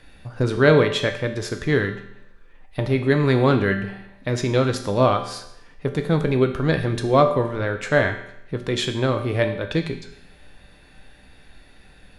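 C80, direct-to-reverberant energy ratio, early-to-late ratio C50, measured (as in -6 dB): 11.5 dB, 5.0 dB, 9.5 dB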